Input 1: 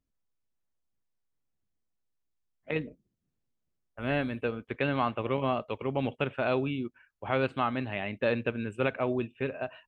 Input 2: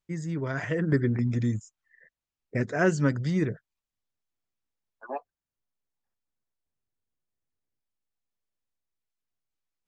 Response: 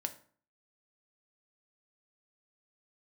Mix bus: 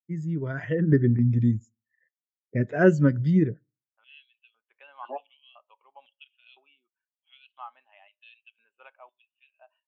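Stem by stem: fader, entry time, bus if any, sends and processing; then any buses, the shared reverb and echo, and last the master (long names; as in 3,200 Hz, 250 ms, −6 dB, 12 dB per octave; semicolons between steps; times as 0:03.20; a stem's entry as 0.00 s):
−11.0 dB, 0.00 s, send −10.5 dB, auto-filter high-pass square 0.99 Hz 880–3,100 Hz
+2.5 dB, 0.00 s, send −10 dB, high-pass filter 59 Hz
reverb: on, RT60 0.45 s, pre-delay 3 ms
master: parametric band 3,100 Hz +7.5 dB 0.43 octaves; every bin expanded away from the loudest bin 1.5 to 1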